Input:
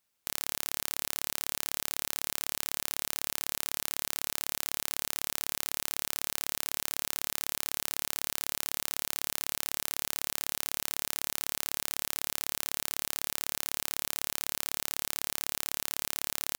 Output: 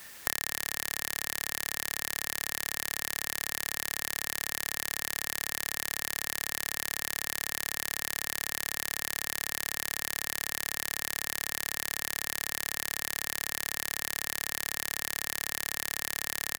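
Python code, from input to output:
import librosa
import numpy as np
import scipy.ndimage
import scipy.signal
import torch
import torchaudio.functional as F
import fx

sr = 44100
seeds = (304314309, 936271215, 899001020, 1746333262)

y = fx.peak_eq(x, sr, hz=1800.0, db=14.5, octaves=0.21)
y = y + 10.0 ** (-20.0 / 20.0) * np.pad(y, (int(216 * sr / 1000.0), 0))[:len(y)]
y = fx.band_squash(y, sr, depth_pct=100)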